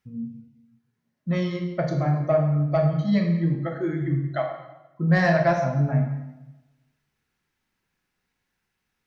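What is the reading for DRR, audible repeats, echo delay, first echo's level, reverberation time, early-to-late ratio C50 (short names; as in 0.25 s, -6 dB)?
3.0 dB, none, none, none, 1.0 s, 5.5 dB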